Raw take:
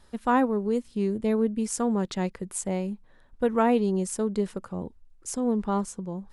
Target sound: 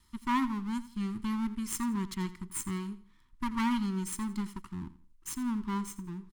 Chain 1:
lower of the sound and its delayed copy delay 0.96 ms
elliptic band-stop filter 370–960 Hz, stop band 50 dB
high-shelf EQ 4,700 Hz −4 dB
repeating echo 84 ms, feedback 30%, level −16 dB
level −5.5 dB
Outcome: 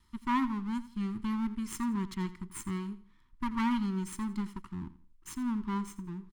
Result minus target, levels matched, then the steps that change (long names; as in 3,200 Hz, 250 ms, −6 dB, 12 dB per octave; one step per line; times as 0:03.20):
8,000 Hz band −6.0 dB
change: high-shelf EQ 4,700 Hz +4.5 dB